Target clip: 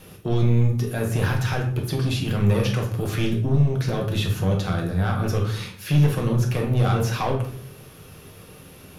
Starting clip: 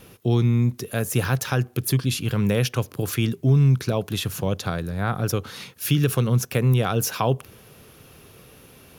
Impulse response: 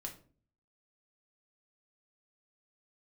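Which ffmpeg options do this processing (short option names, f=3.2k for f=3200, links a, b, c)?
-filter_complex "[0:a]asoftclip=type=tanh:threshold=-18dB,acrossover=split=4400[a][b];[b]acompressor=threshold=-41dB:ratio=4:attack=1:release=60[c];[a][c]amix=inputs=2:normalize=0[d];[1:a]atrim=start_sample=2205,asetrate=26901,aresample=44100[e];[d][e]afir=irnorm=-1:irlink=0,volume=2.5dB"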